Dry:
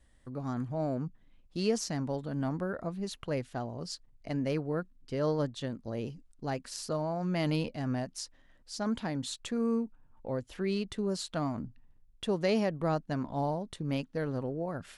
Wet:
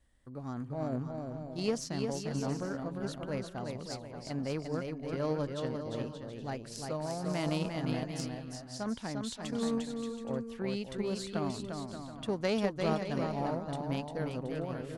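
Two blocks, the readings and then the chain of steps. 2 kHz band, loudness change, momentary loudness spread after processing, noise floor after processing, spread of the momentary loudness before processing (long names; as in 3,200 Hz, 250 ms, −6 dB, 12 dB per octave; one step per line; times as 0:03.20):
−1.0 dB, −2.0 dB, 8 LU, −47 dBFS, 10 LU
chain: bouncing-ball delay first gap 350 ms, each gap 0.65×, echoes 5
harmonic generator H 3 −18 dB, 5 −39 dB, 7 −35 dB, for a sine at −15 dBFS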